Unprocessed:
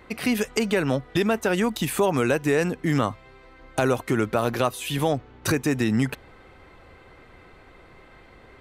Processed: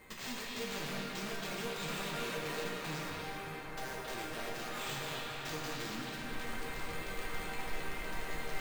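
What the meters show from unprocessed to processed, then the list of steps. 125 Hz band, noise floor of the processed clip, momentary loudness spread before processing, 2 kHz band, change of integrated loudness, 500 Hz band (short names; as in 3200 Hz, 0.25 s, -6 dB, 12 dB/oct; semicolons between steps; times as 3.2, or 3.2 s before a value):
-18.0 dB, -44 dBFS, 4 LU, -9.5 dB, -15.5 dB, -17.5 dB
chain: spectral noise reduction 9 dB; high shelf 2900 Hz +6 dB; notch 1400 Hz, Q 23; reverse; upward compressor, threshold -29 dBFS; reverse; limiter -17.5 dBFS, peak gain reduction 10.5 dB; compressor 16:1, threshold -39 dBFS, peak gain reduction 18.5 dB; wrapped overs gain 35.5 dB; resonator bank D#3 major, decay 0.2 s; sample-and-hold 4×; on a send: delay with a stepping band-pass 0.269 s, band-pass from 3200 Hz, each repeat -0.7 oct, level -1 dB; on the sum: plate-style reverb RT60 4.7 s, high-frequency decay 0.5×, pre-delay 0 ms, DRR -3.5 dB; gain +11.5 dB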